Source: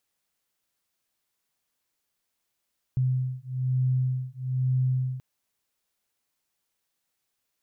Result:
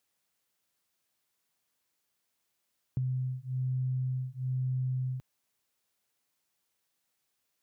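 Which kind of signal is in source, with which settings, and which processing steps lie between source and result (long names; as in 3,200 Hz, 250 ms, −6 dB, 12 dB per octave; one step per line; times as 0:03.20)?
two tones that beat 128 Hz, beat 1.1 Hz, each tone −26.5 dBFS 2.23 s
high-pass filter 65 Hz
downward compressor, threshold −30 dBFS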